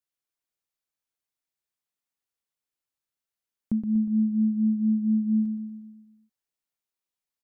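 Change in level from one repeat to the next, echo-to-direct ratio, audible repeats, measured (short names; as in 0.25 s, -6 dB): -5.0 dB, -6.0 dB, 6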